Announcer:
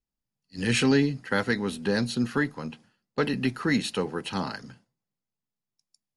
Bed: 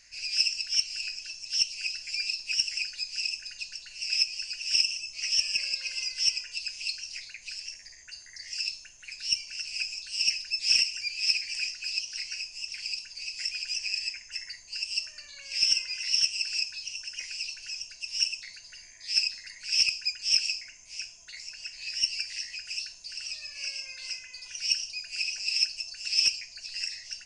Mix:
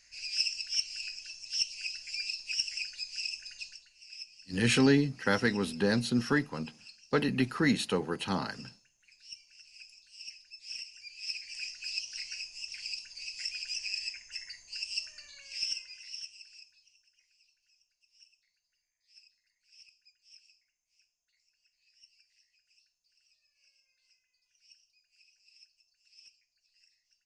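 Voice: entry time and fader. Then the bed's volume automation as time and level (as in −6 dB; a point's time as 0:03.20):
3.95 s, −2.0 dB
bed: 0:03.67 −5 dB
0:03.95 −19.5 dB
0:10.69 −19.5 dB
0:11.90 −4.5 dB
0:15.30 −4.5 dB
0:17.26 −33.5 dB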